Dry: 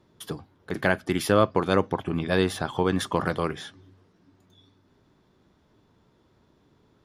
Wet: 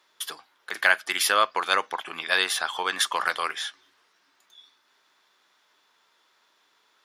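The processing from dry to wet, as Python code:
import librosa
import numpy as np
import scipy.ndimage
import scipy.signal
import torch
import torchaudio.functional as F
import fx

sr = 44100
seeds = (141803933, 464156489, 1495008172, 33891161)

y = scipy.signal.sosfilt(scipy.signal.butter(2, 1400.0, 'highpass', fs=sr, output='sos'), x)
y = F.gain(torch.from_numpy(y), 9.0).numpy()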